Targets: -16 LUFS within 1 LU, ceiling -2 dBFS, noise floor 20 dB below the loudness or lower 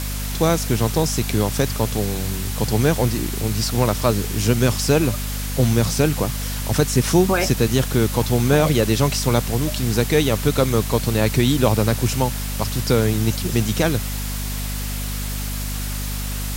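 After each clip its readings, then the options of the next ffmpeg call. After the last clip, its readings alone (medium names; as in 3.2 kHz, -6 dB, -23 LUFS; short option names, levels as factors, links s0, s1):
hum 50 Hz; highest harmonic 250 Hz; hum level -24 dBFS; noise floor -26 dBFS; noise floor target -41 dBFS; loudness -20.5 LUFS; peak level -2.5 dBFS; loudness target -16.0 LUFS
-> -af "bandreject=f=50:t=h:w=4,bandreject=f=100:t=h:w=4,bandreject=f=150:t=h:w=4,bandreject=f=200:t=h:w=4,bandreject=f=250:t=h:w=4"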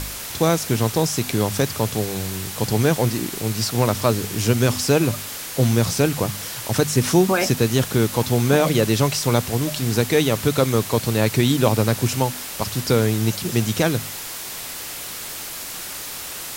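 hum not found; noise floor -32 dBFS; noise floor target -41 dBFS
-> -af "afftdn=nr=9:nf=-32"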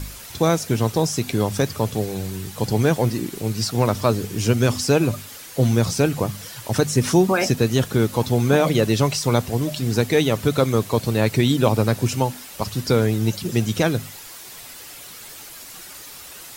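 noise floor -40 dBFS; noise floor target -41 dBFS
-> -af "afftdn=nr=6:nf=-40"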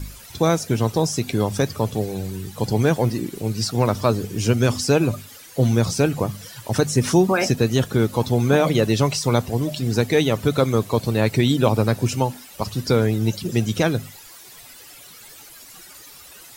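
noise floor -44 dBFS; loudness -21.0 LUFS; peak level -2.5 dBFS; loudness target -16.0 LUFS
-> -af "volume=1.78,alimiter=limit=0.794:level=0:latency=1"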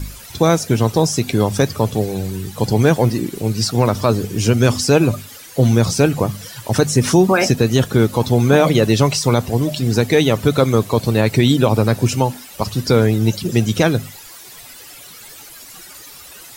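loudness -16.5 LUFS; peak level -2.0 dBFS; noise floor -39 dBFS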